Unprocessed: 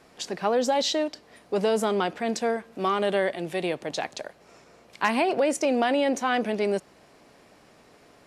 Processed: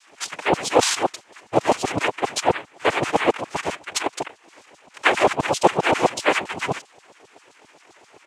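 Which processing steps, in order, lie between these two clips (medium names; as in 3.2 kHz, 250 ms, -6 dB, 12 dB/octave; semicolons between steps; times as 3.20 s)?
LFO high-pass saw down 7.6 Hz 470–4600 Hz; pitch shift -5 st; noise-vocoded speech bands 4; trim +5 dB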